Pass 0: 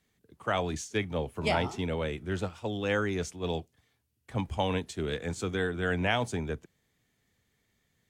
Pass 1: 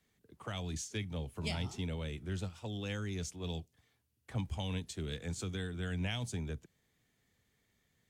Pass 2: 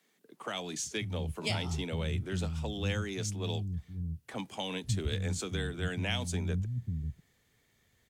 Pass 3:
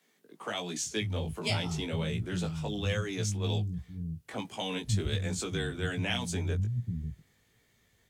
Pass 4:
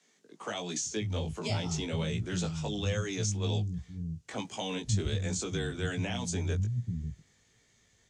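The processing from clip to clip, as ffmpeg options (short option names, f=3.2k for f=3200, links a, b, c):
-filter_complex "[0:a]acrossover=split=200|3000[a][b][c];[b]acompressor=threshold=-43dB:ratio=5[d];[a][d][c]amix=inputs=3:normalize=0,volume=-2dB"
-filter_complex "[0:a]acrossover=split=200[a][b];[a]adelay=540[c];[c][b]amix=inputs=2:normalize=0,volume=6dB"
-af "flanger=delay=17:depth=2.7:speed=1.3,volume=5dB"
-filter_complex "[0:a]acrossover=split=1000[a][b];[b]alimiter=level_in=6.5dB:limit=-24dB:level=0:latency=1:release=154,volume=-6.5dB[c];[a][c]amix=inputs=2:normalize=0,lowpass=f=6.7k:t=q:w=2.6"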